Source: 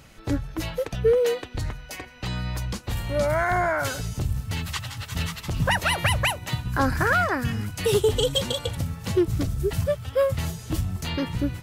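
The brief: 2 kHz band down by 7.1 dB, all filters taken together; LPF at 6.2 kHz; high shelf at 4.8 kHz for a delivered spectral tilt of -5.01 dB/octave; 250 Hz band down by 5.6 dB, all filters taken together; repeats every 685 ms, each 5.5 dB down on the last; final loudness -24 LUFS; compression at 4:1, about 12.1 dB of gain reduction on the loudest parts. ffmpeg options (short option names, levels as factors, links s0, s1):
-af "lowpass=6200,equalizer=f=250:t=o:g=-8.5,equalizer=f=2000:t=o:g=-8.5,highshelf=f=4800:g=-8.5,acompressor=threshold=0.02:ratio=4,aecho=1:1:685|1370|2055|2740|3425|4110|4795:0.531|0.281|0.149|0.079|0.0419|0.0222|0.0118,volume=3.98"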